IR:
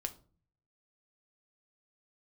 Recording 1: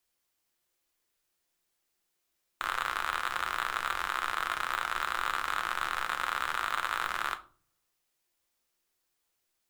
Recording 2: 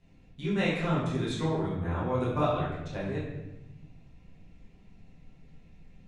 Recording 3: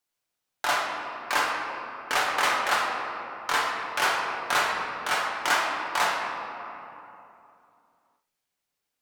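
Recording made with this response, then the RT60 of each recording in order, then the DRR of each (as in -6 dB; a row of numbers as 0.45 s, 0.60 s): 1; 0.40 s, 1.0 s, 2.9 s; 6.5 dB, -9.0 dB, -3.0 dB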